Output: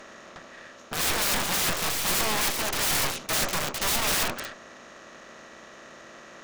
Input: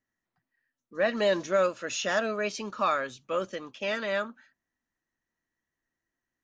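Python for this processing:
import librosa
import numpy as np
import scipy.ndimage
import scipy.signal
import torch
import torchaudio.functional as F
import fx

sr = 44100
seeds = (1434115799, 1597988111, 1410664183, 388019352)

y = fx.bin_compress(x, sr, power=0.4)
y = fx.cheby_harmonics(y, sr, harmonics=(8,), levels_db=(-8,), full_scale_db=-9.5)
y = (np.mod(10.0 ** (19.0 / 20.0) * y + 1.0, 2.0) - 1.0) / 10.0 ** (19.0 / 20.0)
y = y * librosa.db_to_amplitude(-1.5)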